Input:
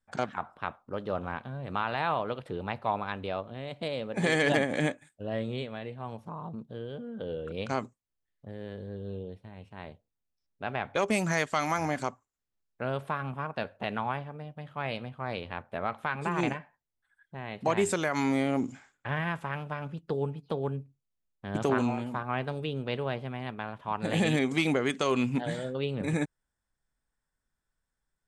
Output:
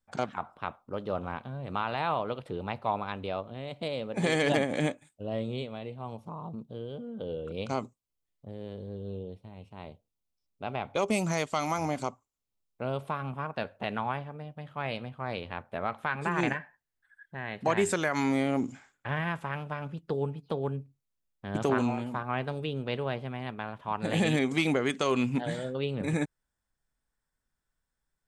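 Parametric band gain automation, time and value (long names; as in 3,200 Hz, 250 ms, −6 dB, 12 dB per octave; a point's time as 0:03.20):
parametric band 1,700 Hz 0.41 octaves
0:04.81 −5 dB
0:05.26 −12.5 dB
0:12.94 −12.5 dB
0:13.47 −1 dB
0:15.94 −1 dB
0:16.55 +10.5 dB
0:17.39 +10.5 dB
0:18.31 −0.5 dB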